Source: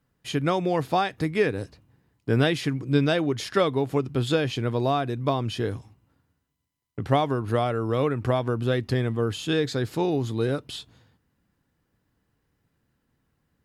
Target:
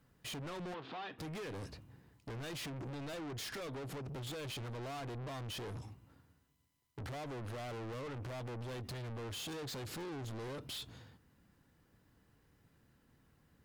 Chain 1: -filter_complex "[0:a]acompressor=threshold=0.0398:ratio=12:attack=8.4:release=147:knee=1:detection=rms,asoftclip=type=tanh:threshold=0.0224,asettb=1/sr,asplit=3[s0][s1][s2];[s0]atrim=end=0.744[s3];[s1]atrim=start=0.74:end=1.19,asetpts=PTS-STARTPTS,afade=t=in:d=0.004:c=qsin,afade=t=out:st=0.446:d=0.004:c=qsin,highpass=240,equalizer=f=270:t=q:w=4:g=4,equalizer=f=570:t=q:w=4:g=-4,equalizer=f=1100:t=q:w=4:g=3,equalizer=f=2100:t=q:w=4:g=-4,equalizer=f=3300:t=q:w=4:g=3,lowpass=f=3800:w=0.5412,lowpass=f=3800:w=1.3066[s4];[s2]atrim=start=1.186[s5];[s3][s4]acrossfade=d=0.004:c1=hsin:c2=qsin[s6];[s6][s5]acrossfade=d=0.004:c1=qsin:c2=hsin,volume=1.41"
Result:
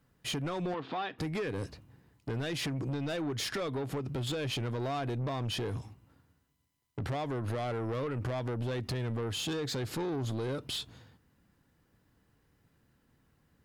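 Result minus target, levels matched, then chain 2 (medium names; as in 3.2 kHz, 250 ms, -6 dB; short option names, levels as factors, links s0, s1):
saturation: distortion -6 dB
-filter_complex "[0:a]acompressor=threshold=0.0398:ratio=12:attack=8.4:release=147:knee=1:detection=rms,asoftclip=type=tanh:threshold=0.00562,asettb=1/sr,asplit=3[s0][s1][s2];[s0]atrim=end=0.744[s3];[s1]atrim=start=0.74:end=1.19,asetpts=PTS-STARTPTS,afade=t=in:d=0.004:c=qsin,afade=t=out:st=0.446:d=0.004:c=qsin,highpass=240,equalizer=f=270:t=q:w=4:g=4,equalizer=f=570:t=q:w=4:g=-4,equalizer=f=1100:t=q:w=4:g=3,equalizer=f=2100:t=q:w=4:g=-4,equalizer=f=3300:t=q:w=4:g=3,lowpass=f=3800:w=0.5412,lowpass=f=3800:w=1.3066[s4];[s2]atrim=start=1.186[s5];[s3][s4]acrossfade=d=0.004:c1=hsin:c2=qsin[s6];[s6][s5]acrossfade=d=0.004:c1=qsin:c2=hsin,volume=1.41"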